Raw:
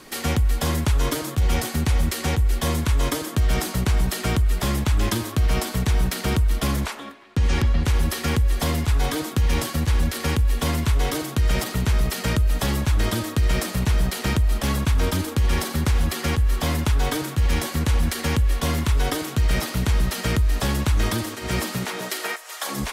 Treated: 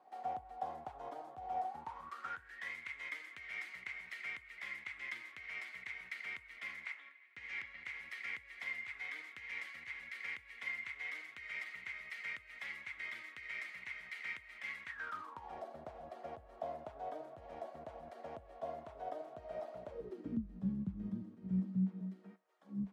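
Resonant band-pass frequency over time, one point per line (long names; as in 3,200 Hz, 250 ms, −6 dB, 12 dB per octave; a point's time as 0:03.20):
resonant band-pass, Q 15
0:01.67 750 Hz
0:02.72 2,100 Hz
0:14.83 2,100 Hz
0:15.61 660 Hz
0:19.83 660 Hz
0:20.48 190 Hz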